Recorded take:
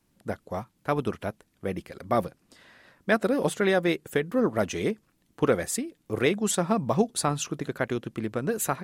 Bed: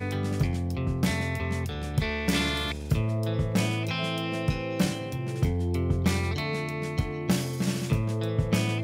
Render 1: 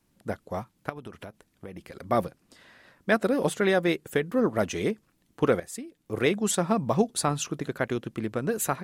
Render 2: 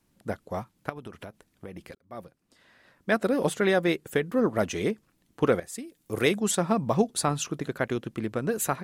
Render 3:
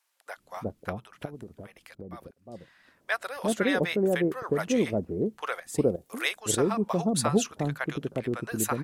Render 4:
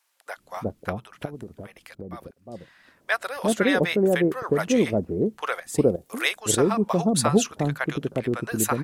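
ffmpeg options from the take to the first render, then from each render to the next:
-filter_complex "[0:a]asettb=1/sr,asplit=3[s0][s1][s2];[s0]atrim=end=0.894[s3];[s1]atrim=start=0.89:end=1.97,asetpts=PTS-STARTPTS,afade=t=in:d=0.004:c=qsin,afade=t=out:st=1.076:d=0.004:c=qsin,acompressor=threshold=0.0158:ratio=8:attack=3.2:release=140:knee=1:detection=peak[s4];[s2]atrim=start=1.966[s5];[s3][s4]acrossfade=d=0.004:c1=hsin:c2=qsin[s6];[s6][s5]acrossfade=d=0.004:c1=qsin:c2=hsin,asplit=2[s7][s8];[s7]atrim=end=5.6,asetpts=PTS-STARTPTS,afade=t=out:st=5.596:d=0.004:c=hsin:silence=0.199526[s9];[s8]atrim=start=5.6,asetpts=PTS-STARTPTS,afade=t=in:d=0.7:silence=0.199526[s10];[s9][s10]concat=n=2:v=0:a=1"
-filter_complex "[0:a]asettb=1/sr,asplit=3[s0][s1][s2];[s0]atrim=end=5.784[s3];[s1]atrim=start=5.78:end=6.4,asetpts=PTS-STARTPTS,afade=t=in:d=0.004:c=qsin,afade=t=out:st=0.616:d=0.004:c=qsin,highshelf=f=5500:g=11.5[s4];[s2]atrim=start=6.396[s5];[s3][s4]acrossfade=d=0.004:c1=hsin:c2=qsin[s6];[s6][s5]acrossfade=d=0.004:c1=qsin:c2=hsin,asplit=2[s7][s8];[s7]atrim=end=1.95,asetpts=PTS-STARTPTS,afade=t=out:st=1.946:d=0.004:c=hsin[s9];[s8]atrim=start=1.95,asetpts=PTS-STARTPTS,afade=t=in:d=1.4[s10];[s9][s10]concat=n=2:v=0:a=1"
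-filter_complex "[0:a]acrossover=split=710[s0][s1];[s0]adelay=360[s2];[s2][s1]amix=inputs=2:normalize=0"
-af "volume=1.68"

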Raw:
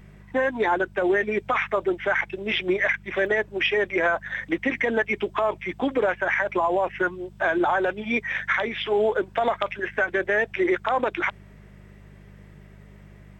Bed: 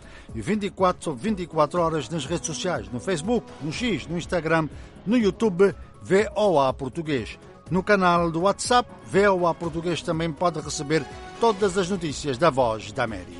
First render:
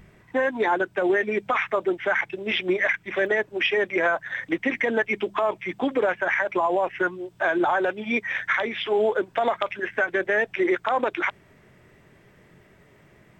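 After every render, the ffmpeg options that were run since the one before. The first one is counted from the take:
-af "bandreject=f=50:t=h:w=4,bandreject=f=100:t=h:w=4,bandreject=f=150:t=h:w=4,bandreject=f=200:t=h:w=4"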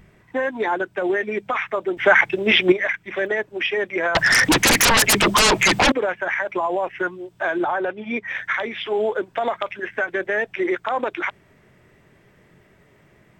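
-filter_complex "[0:a]asettb=1/sr,asplit=3[s0][s1][s2];[s0]atrim=end=4.154[s3];[s1]atrim=start=4.15:end=5.92,asetpts=PTS-STARTPTS,afade=t=in:d=0.004:c=qsin,afade=t=out:st=1.766:d=0.004:c=qsin,aeval=exprs='0.266*sin(PI/2*8.91*val(0)/0.266)':c=same[s4];[s2]atrim=start=5.916[s5];[s3][s4]acrossfade=d=0.004:c1=hsin:c2=qsin[s6];[s6][s5]acrossfade=d=0.004:c1=qsin:c2=hsin,asettb=1/sr,asplit=3[s7][s8][s9];[s7]atrim=end=7.644[s10];[s8]atrim=start=7.64:end=8.28,asetpts=PTS-STARTPTS,afade=t=in:d=0.004:c=qsin,afade=t=out:st=0.636:d=0.004:c=qsin,lowpass=f=2500:p=1[s11];[s9]atrim=start=8.276[s12];[s10][s11]acrossfade=d=0.004:c1=hsin:c2=qsin[s13];[s13][s12]acrossfade=d=0.004:c1=qsin:c2=hsin,asplit=3[s14][s15][s16];[s14]atrim=end=1.972[s17];[s15]atrim=start=1.968:end=2.722,asetpts=PTS-STARTPTS,volume=2.99[s18];[s16]atrim=start=2.718[s19];[s17][s18]acrossfade=d=0.004:c1=hsin:c2=hsin[s20];[s20][s19]acrossfade=d=0.004:c1=hsin:c2=hsin"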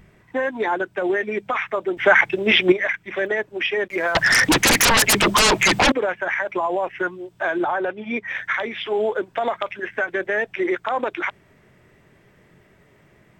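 -filter_complex "[0:a]asettb=1/sr,asplit=3[s0][s1][s2];[s0]atrim=end=3.884[s3];[s1]atrim=start=3.88:end=5.71,asetpts=PTS-STARTPTS,afade=t=in:d=0.004:c=qsin,afade=t=out:st=1.826:d=0.004:c=qsin,aeval=exprs='sgn(val(0))*max(abs(val(0))-0.00531,0)':c=same[s4];[s2]atrim=start=5.706[s5];[s3][s4]acrossfade=d=0.004:c1=hsin:c2=qsin[s6];[s6][s5]acrossfade=d=0.004:c1=qsin:c2=hsin"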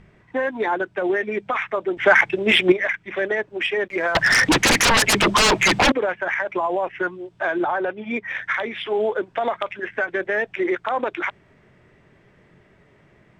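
-af "adynamicsmooth=sensitivity=1:basefreq=6700"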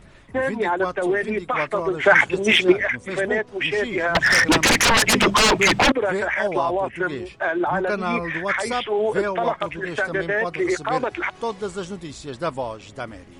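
-filter_complex "[1:a]volume=0.473[s0];[0:a][s0]amix=inputs=2:normalize=0"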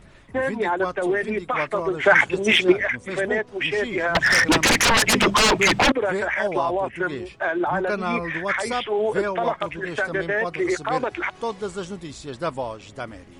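-af "volume=0.891"

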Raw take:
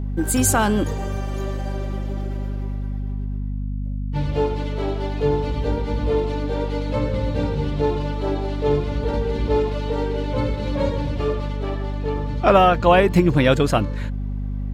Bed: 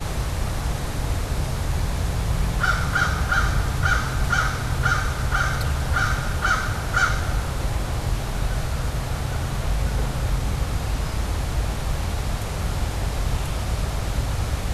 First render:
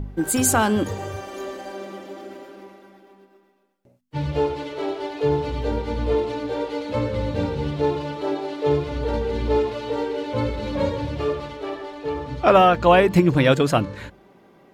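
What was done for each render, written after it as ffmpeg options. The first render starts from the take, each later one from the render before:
-af "bandreject=f=50:t=h:w=4,bandreject=f=100:t=h:w=4,bandreject=f=150:t=h:w=4,bandreject=f=200:t=h:w=4,bandreject=f=250:t=h:w=4"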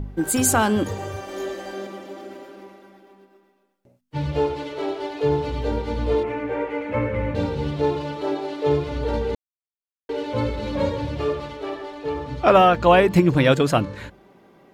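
-filter_complex "[0:a]asettb=1/sr,asplit=3[s0][s1][s2];[s0]atrim=end=1.274[s3];[s1]atrim=start=1.27:end=1.87,asetpts=PTS-STARTPTS,afade=t=in:d=0.004:c=qsin,afade=t=out:st=0.596:d=0.004:c=qsin,asplit=2[s4][s5];[s5]adelay=21,volume=0.75[s6];[s4][s6]amix=inputs=2:normalize=0,atrim=end_sample=26460[s7];[s2]atrim=start=1.866[s8];[s3][s7]acrossfade=d=0.004:c1=hsin:c2=qsin[s9];[s9][s8]acrossfade=d=0.004:c1=qsin:c2=hsin,asettb=1/sr,asplit=3[s10][s11][s12];[s10]atrim=end=6.234[s13];[s11]atrim=start=6.23:end=7.35,asetpts=PTS-STARTPTS,afade=t=in:d=0.004:c=qsin,afade=t=out:st=1.116:d=0.004:c=qsin,highshelf=f=3000:t=q:w=3:g=-11[s14];[s12]atrim=start=7.346[s15];[s13][s14]acrossfade=d=0.004:c1=hsin:c2=qsin[s16];[s16][s15]acrossfade=d=0.004:c1=qsin:c2=hsin,asplit=3[s17][s18][s19];[s17]atrim=end=9.35,asetpts=PTS-STARTPTS,afade=t=out:st=9.346:d=0.004:c=hsin[s20];[s18]atrim=start=9.35:end=10.09,asetpts=PTS-STARTPTS,volume=0[s21];[s19]atrim=start=10.09,asetpts=PTS-STARTPTS,afade=t=in:d=0.004:c=hsin[s22];[s20][s21][s22]concat=n=3:v=0:a=1"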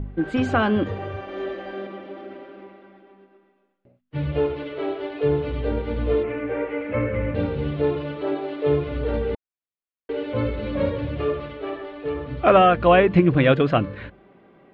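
-af "lowpass=f=3200:w=0.5412,lowpass=f=3200:w=1.3066,bandreject=f=900:w=6.8"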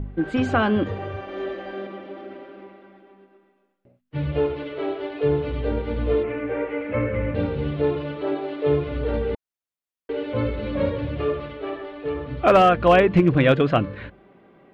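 -af "volume=2.37,asoftclip=hard,volume=0.422"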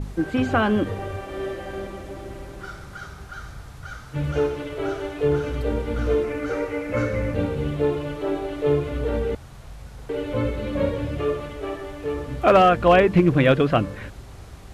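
-filter_complex "[1:a]volume=0.141[s0];[0:a][s0]amix=inputs=2:normalize=0"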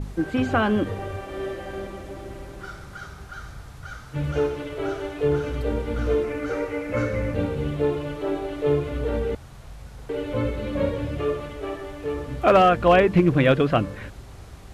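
-af "volume=0.891"

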